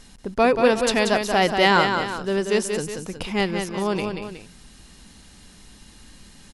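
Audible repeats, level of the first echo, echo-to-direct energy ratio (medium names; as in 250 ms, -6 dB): 2, -6.0 dB, -5.0 dB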